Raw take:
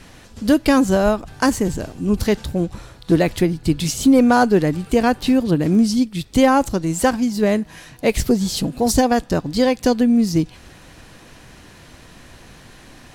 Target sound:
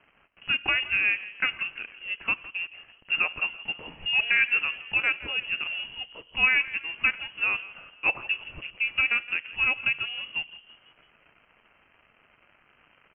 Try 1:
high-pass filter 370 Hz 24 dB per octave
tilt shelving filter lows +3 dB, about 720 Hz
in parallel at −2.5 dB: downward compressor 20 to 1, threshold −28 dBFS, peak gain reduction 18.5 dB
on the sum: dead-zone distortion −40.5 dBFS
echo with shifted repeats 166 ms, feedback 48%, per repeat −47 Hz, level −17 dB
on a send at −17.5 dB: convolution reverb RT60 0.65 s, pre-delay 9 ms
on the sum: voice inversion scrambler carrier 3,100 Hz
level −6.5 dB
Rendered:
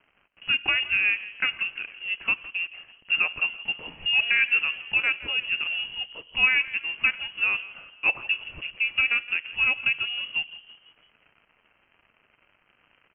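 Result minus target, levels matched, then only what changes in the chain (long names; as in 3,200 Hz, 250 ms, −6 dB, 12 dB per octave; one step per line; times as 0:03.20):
downward compressor: peak gain reduction −9 dB; 1,000 Hz band −3.0 dB
change: downward compressor 20 to 1, threshold −38 dBFS, peak gain reduction 28 dB
remove: tilt shelving filter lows +3 dB, about 720 Hz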